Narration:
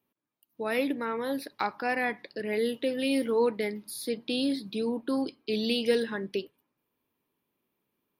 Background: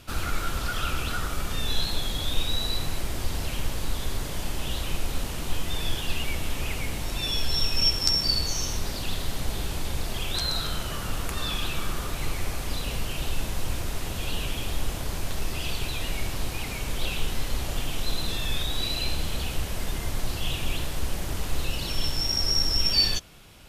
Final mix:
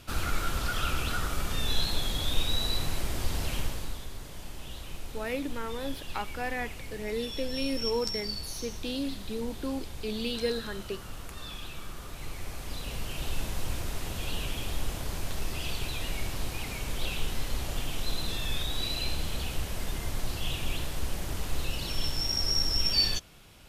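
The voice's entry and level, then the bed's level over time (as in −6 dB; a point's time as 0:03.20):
4.55 s, −5.0 dB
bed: 0:03.58 −1.5 dB
0:04.09 −11.5 dB
0:11.96 −11.5 dB
0:13.36 −3.5 dB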